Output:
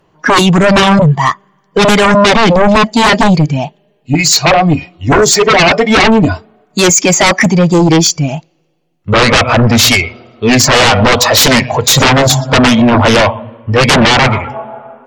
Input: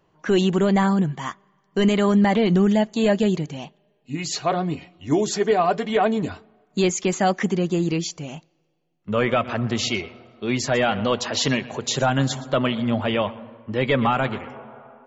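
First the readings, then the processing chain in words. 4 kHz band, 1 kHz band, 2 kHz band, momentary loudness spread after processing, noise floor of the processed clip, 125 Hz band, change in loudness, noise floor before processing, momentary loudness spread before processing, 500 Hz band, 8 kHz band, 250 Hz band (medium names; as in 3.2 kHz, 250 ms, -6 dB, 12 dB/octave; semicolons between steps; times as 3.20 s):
+18.0 dB, +14.5 dB, +18.0 dB, 10 LU, -56 dBFS, +14.0 dB, +14.0 dB, -66 dBFS, 14 LU, +11.5 dB, no reading, +11.0 dB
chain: spectral noise reduction 12 dB; sine folder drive 13 dB, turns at -9 dBFS; trim +5.5 dB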